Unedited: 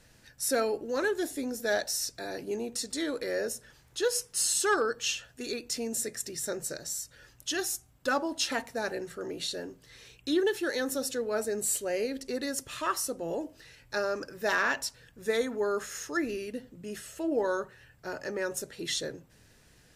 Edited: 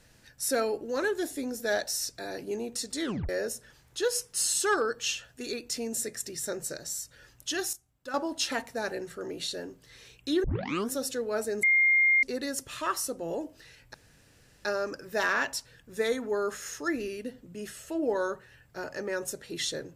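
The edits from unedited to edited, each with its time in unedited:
0:03.04: tape stop 0.25 s
0:07.73–0:08.14: clip gain −11 dB
0:10.44: tape start 0.48 s
0:11.63–0:12.23: beep over 2,120 Hz −19 dBFS
0:13.94: splice in room tone 0.71 s

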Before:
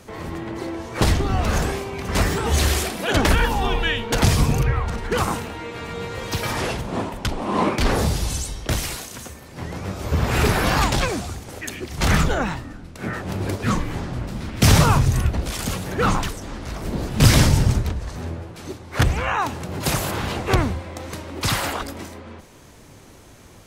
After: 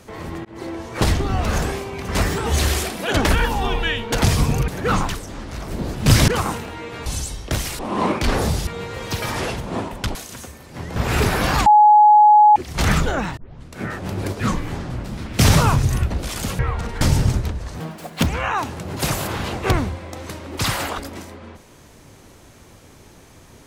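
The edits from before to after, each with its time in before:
0:00.45–0:00.75: fade in equal-power
0:04.68–0:05.10: swap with 0:15.82–0:17.42
0:05.88–0:07.36: swap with 0:08.24–0:08.97
0:09.78–0:10.19: remove
0:10.89–0:11.79: beep over 842 Hz −7 dBFS
0:12.60: tape start 0.31 s
0:18.21–0:19.10: play speed 192%

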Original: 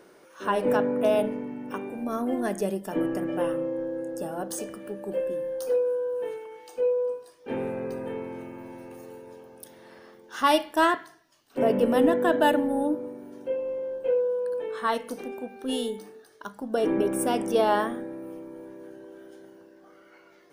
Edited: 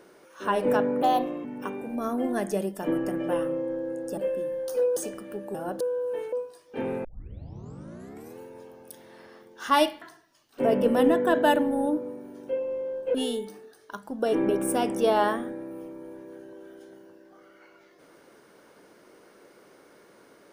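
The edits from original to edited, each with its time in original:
0:01.02–0:01.53: play speed 120%
0:04.26–0:04.52: swap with 0:05.10–0:05.89
0:06.41–0:07.05: remove
0:07.77: tape start 1.35 s
0:10.74–0:10.99: remove
0:14.12–0:15.66: remove

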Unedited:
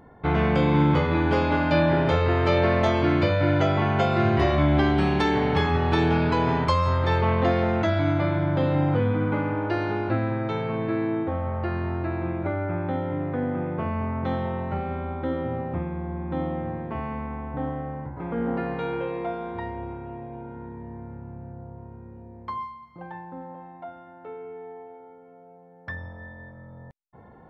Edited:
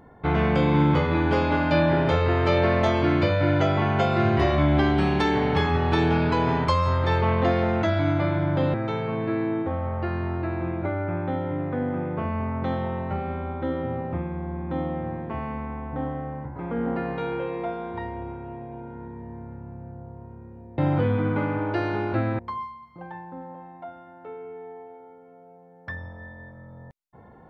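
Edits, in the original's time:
0:08.74–0:10.35: move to 0:22.39

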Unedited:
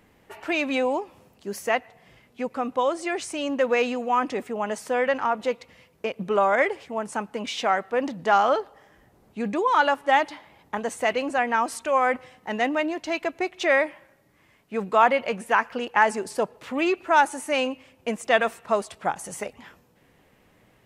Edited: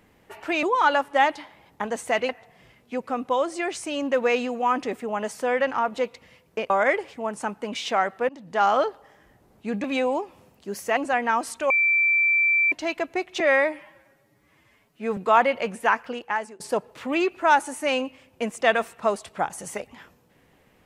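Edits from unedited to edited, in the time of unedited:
0:00.63–0:01.76: swap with 0:09.56–0:11.22
0:06.17–0:06.42: remove
0:08.01–0:08.42: fade in, from −22.5 dB
0:11.95–0:12.97: beep over 2,340 Hz −17 dBFS
0:13.65–0:14.83: time-stretch 1.5×
0:15.58–0:16.26: fade out, to −22.5 dB

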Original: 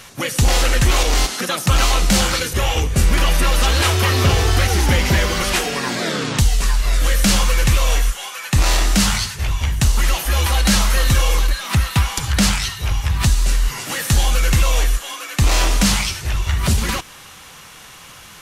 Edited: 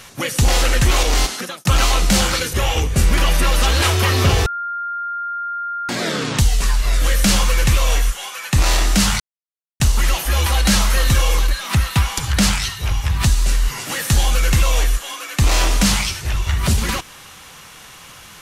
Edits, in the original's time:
0:01.29–0:01.65: fade out
0:04.46–0:05.89: beep over 1,400 Hz −22 dBFS
0:09.20–0:09.80: silence

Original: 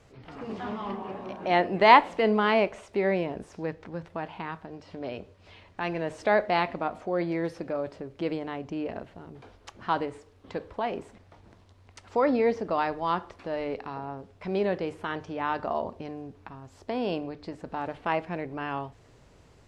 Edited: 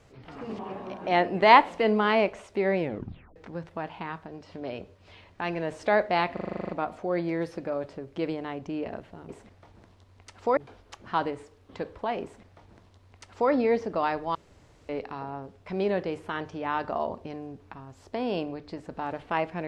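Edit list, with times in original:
0:00.59–0:00.98: remove
0:03.19: tape stop 0.56 s
0:06.72: stutter 0.04 s, 10 plays
0:10.98–0:12.26: duplicate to 0:09.32
0:13.10–0:13.64: fill with room tone

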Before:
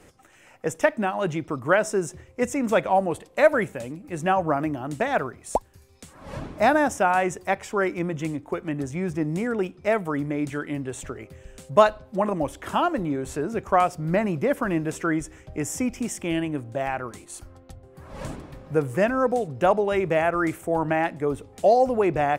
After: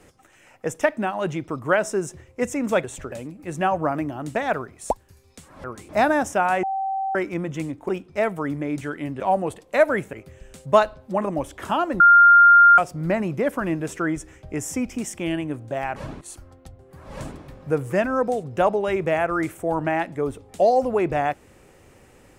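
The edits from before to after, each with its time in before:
0:02.84–0:03.77: swap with 0:10.89–0:11.17
0:06.29–0:06.54: swap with 0:17.00–0:17.25
0:07.28–0:07.80: beep over 774 Hz −22.5 dBFS
0:08.54–0:09.58: remove
0:13.04–0:13.82: beep over 1,400 Hz −8 dBFS

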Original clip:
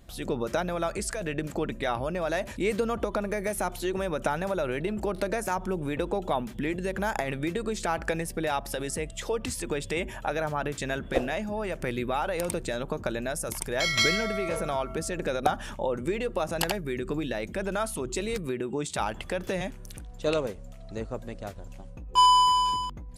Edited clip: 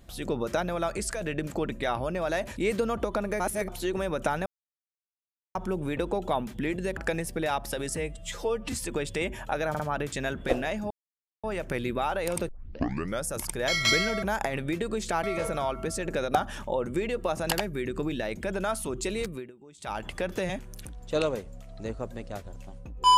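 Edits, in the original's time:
0:03.40–0:03.68: reverse
0:04.46–0:05.55: silence
0:06.97–0:07.98: move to 0:14.35
0:08.97–0:09.48: time-stretch 1.5×
0:10.45: stutter 0.05 s, 3 plays
0:11.56: splice in silence 0.53 s
0:12.61: tape start 0.76 s
0:18.32–0:19.18: duck −20.5 dB, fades 0.32 s linear

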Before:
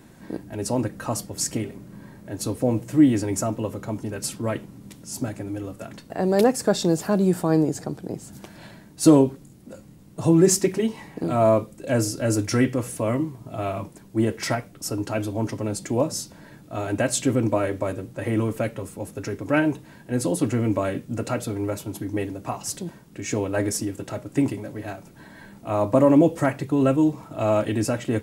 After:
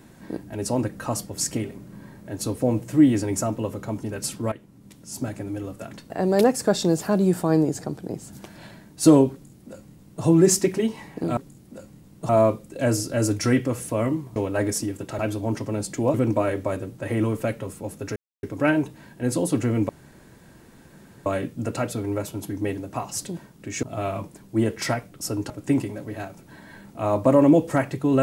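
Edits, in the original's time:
0:04.52–0:05.35: fade in, from −15 dB
0:09.32–0:10.24: duplicate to 0:11.37
0:13.44–0:15.11: swap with 0:23.35–0:24.18
0:16.06–0:17.30: remove
0:19.32: splice in silence 0.27 s
0:20.78: splice in room tone 1.37 s

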